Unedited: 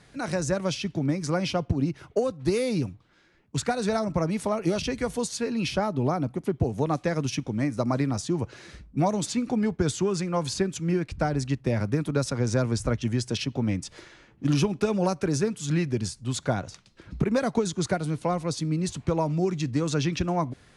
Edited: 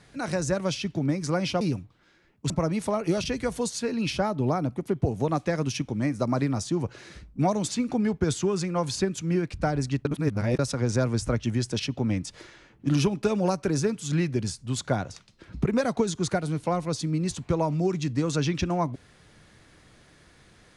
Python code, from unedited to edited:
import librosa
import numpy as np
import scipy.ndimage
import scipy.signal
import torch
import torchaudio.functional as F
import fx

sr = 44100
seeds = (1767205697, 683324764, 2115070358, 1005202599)

y = fx.edit(x, sr, fx.cut(start_s=1.61, length_s=1.1),
    fx.cut(start_s=3.6, length_s=0.48),
    fx.reverse_span(start_s=11.63, length_s=0.54), tone=tone)